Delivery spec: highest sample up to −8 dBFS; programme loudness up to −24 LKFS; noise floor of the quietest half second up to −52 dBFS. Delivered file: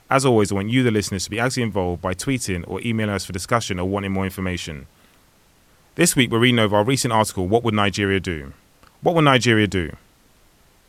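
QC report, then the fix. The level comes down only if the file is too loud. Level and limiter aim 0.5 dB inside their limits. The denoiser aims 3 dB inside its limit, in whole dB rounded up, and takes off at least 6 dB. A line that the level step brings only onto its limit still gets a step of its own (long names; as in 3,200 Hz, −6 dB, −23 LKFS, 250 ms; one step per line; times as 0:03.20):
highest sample −2.0 dBFS: out of spec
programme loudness −20.0 LKFS: out of spec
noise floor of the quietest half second −56 dBFS: in spec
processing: level −4.5 dB
brickwall limiter −8.5 dBFS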